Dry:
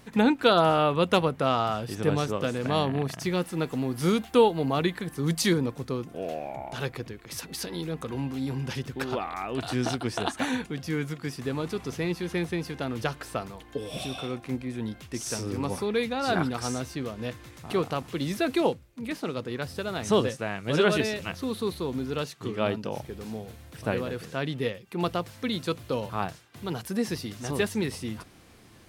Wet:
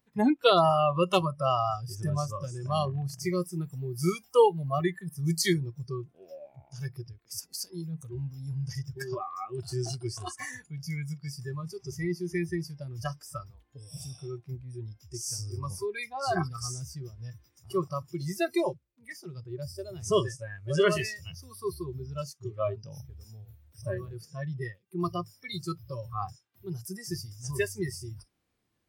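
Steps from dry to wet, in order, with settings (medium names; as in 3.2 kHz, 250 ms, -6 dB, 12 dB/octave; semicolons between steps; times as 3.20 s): spectral noise reduction 25 dB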